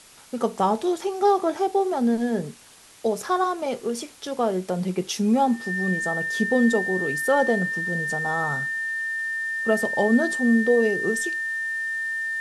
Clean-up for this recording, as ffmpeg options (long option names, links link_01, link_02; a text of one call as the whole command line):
ffmpeg -i in.wav -af "adeclick=threshold=4,bandreject=frequency=1800:width=30,afwtdn=0.004" out.wav